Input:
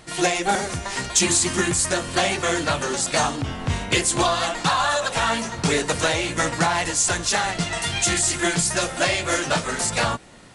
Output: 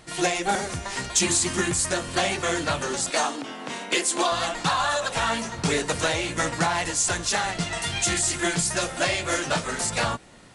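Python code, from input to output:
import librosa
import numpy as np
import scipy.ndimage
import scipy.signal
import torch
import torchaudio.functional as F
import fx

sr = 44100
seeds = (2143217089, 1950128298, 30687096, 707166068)

y = fx.highpass(x, sr, hz=240.0, slope=24, at=(3.1, 4.32))
y = F.gain(torch.from_numpy(y), -3.0).numpy()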